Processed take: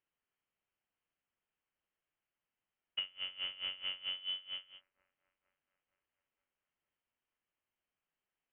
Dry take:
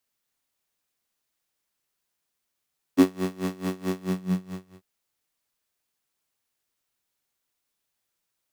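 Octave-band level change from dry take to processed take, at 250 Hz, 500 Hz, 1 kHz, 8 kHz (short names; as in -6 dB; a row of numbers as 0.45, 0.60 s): under -40 dB, -32.5 dB, -20.0 dB, under -30 dB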